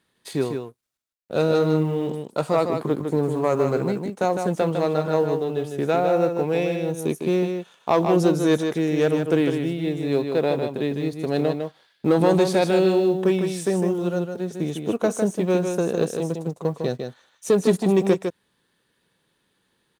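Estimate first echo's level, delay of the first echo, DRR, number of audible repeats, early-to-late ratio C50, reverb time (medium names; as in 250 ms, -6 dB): -6.0 dB, 154 ms, no reverb, 1, no reverb, no reverb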